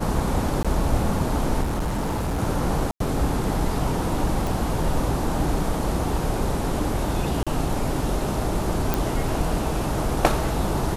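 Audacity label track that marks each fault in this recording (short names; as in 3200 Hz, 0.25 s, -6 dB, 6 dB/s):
0.630000	0.650000	gap 16 ms
1.620000	2.400000	clipped -21.5 dBFS
2.910000	3.000000	gap 93 ms
4.470000	4.470000	pop
7.430000	7.470000	gap 36 ms
8.940000	8.940000	pop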